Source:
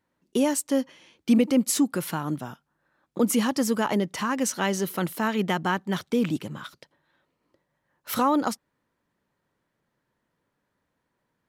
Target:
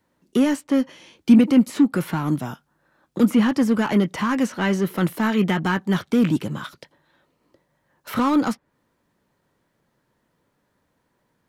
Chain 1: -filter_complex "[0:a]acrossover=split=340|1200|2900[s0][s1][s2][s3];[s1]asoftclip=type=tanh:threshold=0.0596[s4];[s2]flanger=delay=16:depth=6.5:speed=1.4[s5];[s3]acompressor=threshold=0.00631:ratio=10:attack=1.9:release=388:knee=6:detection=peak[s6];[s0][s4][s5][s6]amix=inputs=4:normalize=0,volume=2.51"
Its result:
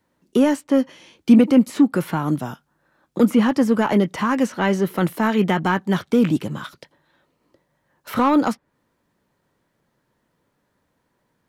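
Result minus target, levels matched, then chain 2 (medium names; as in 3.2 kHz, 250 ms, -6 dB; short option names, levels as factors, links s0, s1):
saturation: distortion -9 dB
-filter_complex "[0:a]acrossover=split=340|1200|2900[s0][s1][s2][s3];[s1]asoftclip=type=tanh:threshold=0.0158[s4];[s2]flanger=delay=16:depth=6.5:speed=1.4[s5];[s3]acompressor=threshold=0.00631:ratio=10:attack=1.9:release=388:knee=6:detection=peak[s6];[s0][s4][s5][s6]amix=inputs=4:normalize=0,volume=2.51"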